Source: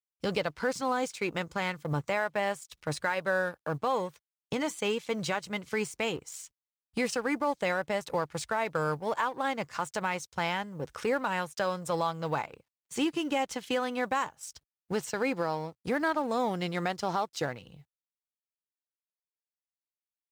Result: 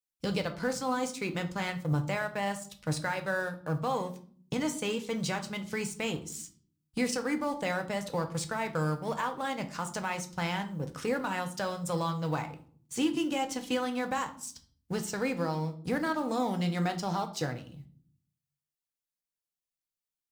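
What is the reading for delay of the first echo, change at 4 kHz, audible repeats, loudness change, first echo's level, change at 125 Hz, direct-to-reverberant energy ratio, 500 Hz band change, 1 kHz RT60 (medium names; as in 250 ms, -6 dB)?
no echo, -0.5 dB, no echo, -1.0 dB, no echo, +5.0 dB, 6.0 dB, -2.5 dB, 0.45 s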